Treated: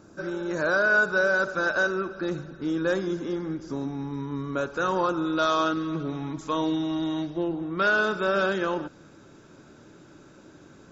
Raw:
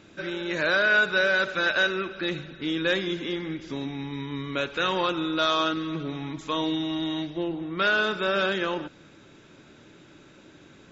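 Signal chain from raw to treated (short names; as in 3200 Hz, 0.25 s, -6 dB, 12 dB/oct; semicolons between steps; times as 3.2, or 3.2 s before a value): band shelf 2700 Hz -15.5 dB 1.3 oct, from 5.25 s -8.5 dB; gain +1.5 dB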